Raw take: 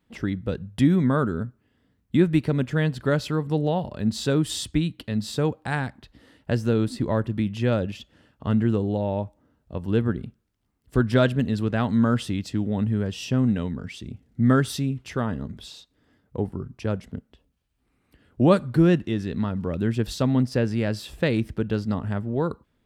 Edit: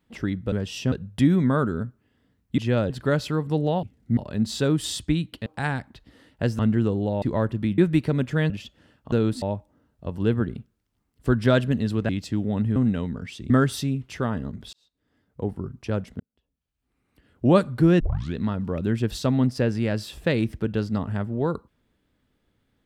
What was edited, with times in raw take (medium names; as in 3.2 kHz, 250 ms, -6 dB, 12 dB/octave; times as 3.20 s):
2.18–2.90 s: swap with 7.53–7.85 s
5.12–5.54 s: delete
6.67–6.97 s: swap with 8.47–9.10 s
11.77–12.31 s: delete
12.98–13.38 s: move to 0.52 s
14.12–14.46 s: move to 3.83 s
15.69–16.54 s: fade in
17.16–18.46 s: fade in
18.96 s: tape start 0.35 s